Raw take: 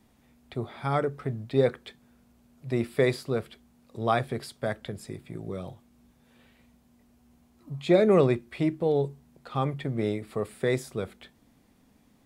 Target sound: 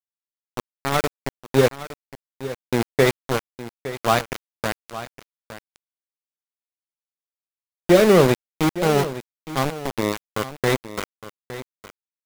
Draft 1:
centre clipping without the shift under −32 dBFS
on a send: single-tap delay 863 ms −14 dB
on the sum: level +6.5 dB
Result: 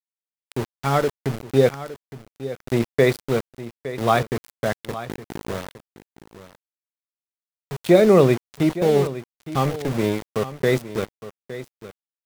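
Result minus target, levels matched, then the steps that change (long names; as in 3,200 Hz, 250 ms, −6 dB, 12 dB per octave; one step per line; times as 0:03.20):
centre clipping without the shift: distortion −9 dB
change: centre clipping without the shift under −23 dBFS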